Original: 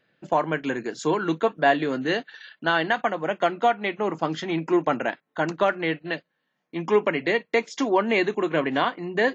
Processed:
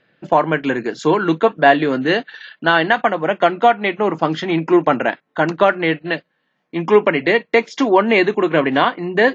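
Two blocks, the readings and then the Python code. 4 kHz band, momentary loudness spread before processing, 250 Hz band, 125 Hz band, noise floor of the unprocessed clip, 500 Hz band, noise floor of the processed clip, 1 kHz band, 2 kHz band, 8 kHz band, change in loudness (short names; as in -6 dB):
+7.0 dB, 7 LU, +8.0 dB, +8.0 dB, -77 dBFS, +8.0 dB, -69 dBFS, +8.0 dB, +8.0 dB, n/a, +8.0 dB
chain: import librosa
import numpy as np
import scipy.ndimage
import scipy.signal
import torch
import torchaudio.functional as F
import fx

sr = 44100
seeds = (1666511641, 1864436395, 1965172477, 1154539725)

y = scipy.signal.sosfilt(scipy.signal.butter(2, 4700.0, 'lowpass', fs=sr, output='sos'), x)
y = y * 10.0 ** (8.0 / 20.0)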